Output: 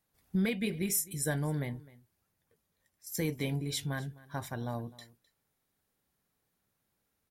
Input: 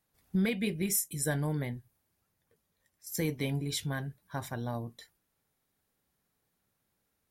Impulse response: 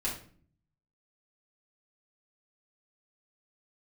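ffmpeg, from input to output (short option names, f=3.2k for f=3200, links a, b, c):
-af "aecho=1:1:257:0.0944,volume=-1dB"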